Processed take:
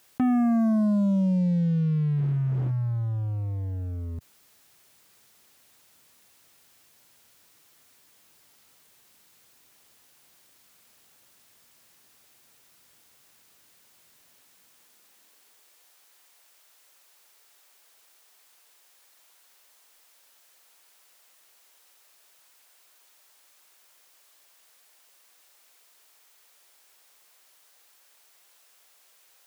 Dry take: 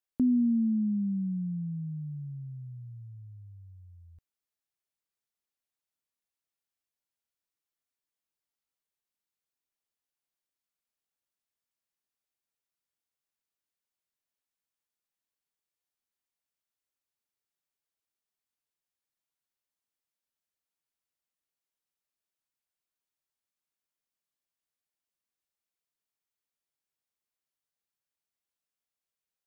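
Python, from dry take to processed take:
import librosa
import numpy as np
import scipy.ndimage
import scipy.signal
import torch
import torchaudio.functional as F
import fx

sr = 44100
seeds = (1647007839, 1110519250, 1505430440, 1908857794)

y = fx.dmg_wind(x, sr, seeds[0], corner_hz=320.0, level_db=-54.0, at=(2.17, 2.7), fade=0.02)
y = fx.low_shelf(y, sr, hz=61.0, db=9.5)
y = fx.leveller(y, sr, passes=3)
y = fx.filter_sweep_highpass(y, sr, from_hz=100.0, to_hz=520.0, start_s=14.28, end_s=15.93, q=0.84)
y = fx.env_flatten(y, sr, amount_pct=50)
y = y * 10.0 ** (-2.0 / 20.0)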